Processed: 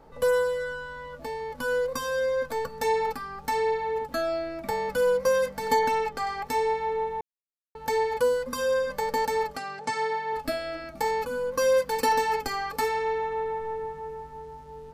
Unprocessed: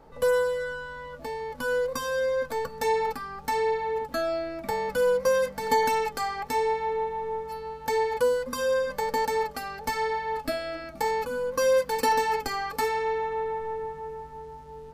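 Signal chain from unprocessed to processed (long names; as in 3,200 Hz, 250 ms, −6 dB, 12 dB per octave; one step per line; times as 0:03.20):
0:05.79–0:06.27: high-shelf EQ 5,700 Hz −10.5 dB
0:07.21–0:07.75: silence
0:09.57–0:10.33: elliptic band-pass filter 110–8,600 Hz, stop band 40 dB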